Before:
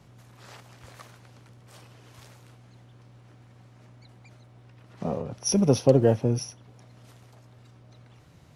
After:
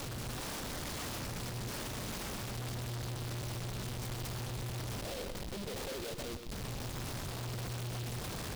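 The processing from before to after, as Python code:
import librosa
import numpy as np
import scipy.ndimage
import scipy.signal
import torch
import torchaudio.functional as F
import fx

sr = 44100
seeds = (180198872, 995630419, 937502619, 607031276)

p1 = x + 0.5 * 10.0 ** (-19.0 / 20.0) * np.diff(np.sign(x), prepend=np.sign(x[:1]))
p2 = scipy.signal.sosfilt(scipy.signal.cheby2(4, 40, 6000.0, 'lowpass', fs=sr, output='sos'), p1)
p3 = fx.spec_gate(p2, sr, threshold_db=-20, keep='strong')
p4 = scipy.signal.sosfilt(scipy.signal.butter(2, 510.0, 'highpass', fs=sr, output='sos'), p3)
p5 = fx.rider(p4, sr, range_db=4, speed_s=2.0)
p6 = fx.schmitt(p5, sr, flips_db=-40.5)
p7 = p6 + fx.echo_single(p6, sr, ms=125, db=-8.0, dry=0)
p8 = fx.noise_mod_delay(p7, sr, seeds[0], noise_hz=3300.0, depth_ms=0.13)
y = p8 * 10.0 ** (-4.5 / 20.0)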